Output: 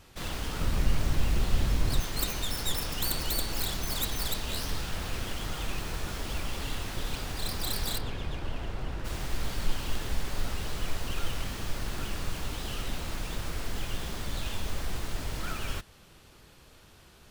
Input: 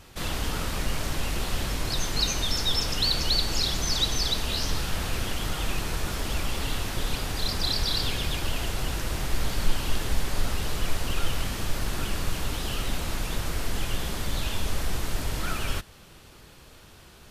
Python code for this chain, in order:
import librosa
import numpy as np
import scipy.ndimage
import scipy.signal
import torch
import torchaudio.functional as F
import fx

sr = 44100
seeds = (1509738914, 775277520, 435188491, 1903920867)

y = fx.tracing_dist(x, sr, depth_ms=0.23)
y = fx.low_shelf(y, sr, hz=260.0, db=9.5, at=(0.6, 2.0))
y = fx.lowpass(y, sr, hz=1400.0, slope=6, at=(7.97, 9.04), fade=0.02)
y = y * librosa.db_to_amplitude(-5.0)